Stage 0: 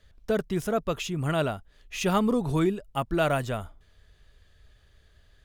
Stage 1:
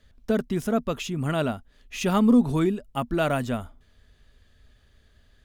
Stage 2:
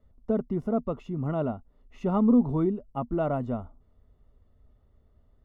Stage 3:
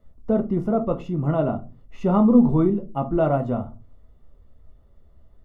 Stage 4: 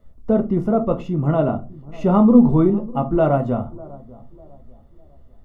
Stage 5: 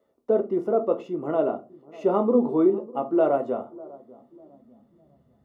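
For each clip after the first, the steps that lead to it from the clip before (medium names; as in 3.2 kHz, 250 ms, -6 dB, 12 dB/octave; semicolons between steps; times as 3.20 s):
peaking EQ 240 Hz +11.5 dB 0.3 oct
Savitzky-Golay filter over 65 samples; trim -2.5 dB
simulated room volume 120 m³, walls furnished, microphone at 0.74 m; trim +5 dB
bucket-brigade echo 598 ms, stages 4096, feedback 36%, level -21 dB; trim +3.5 dB
high-pass sweep 390 Hz -> 140 Hz, 3.94–5.42 s; trim -7 dB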